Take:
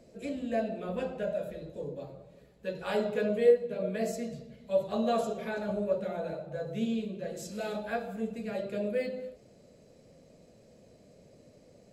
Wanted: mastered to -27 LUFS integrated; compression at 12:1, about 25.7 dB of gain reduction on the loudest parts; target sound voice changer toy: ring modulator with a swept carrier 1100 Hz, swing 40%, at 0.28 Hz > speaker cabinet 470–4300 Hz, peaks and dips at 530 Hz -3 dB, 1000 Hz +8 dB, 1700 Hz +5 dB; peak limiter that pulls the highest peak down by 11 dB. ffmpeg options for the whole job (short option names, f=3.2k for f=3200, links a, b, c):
-af "acompressor=threshold=-43dB:ratio=12,alimiter=level_in=20dB:limit=-24dB:level=0:latency=1,volume=-20dB,aeval=exprs='val(0)*sin(2*PI*1100*n/s+1100*0.4/0.28*sin(2*PI*0.28*n/s))':c=same,highpass=470,equalizer=f=530:t=q:w=4:g=-3,equalizer=f=1k:t=q:w=4:g=8,equalizer=f=1.7k:t=q:w=4:g=5,lowpass=f=4.3k:w=0.5412,lowpass=f=4.3k:w=1.3066,volume=24.5dB"